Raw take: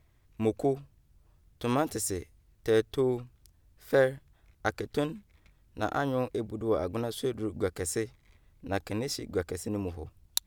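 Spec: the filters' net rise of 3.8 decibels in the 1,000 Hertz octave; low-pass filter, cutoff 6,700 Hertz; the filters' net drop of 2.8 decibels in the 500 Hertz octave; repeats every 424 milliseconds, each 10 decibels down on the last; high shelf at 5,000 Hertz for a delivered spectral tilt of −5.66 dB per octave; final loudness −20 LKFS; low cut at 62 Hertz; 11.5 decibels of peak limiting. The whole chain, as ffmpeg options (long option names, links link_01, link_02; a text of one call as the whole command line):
ffmpeg -i in.wav -af "highpass=62,lowpass=6700,equalizer=frequency=500:width_type=o:gain=-5,equalizer=frequency=1000:width_type=o:gain=7.5,highshelf=frequency=5000:gain=-4,alimiter=limit=-21dB:level=0:latency=1,aecho=1:1:424|848|1272|1696:0.316|0.101|0.0324|0.0104,volume=16dB" out.wav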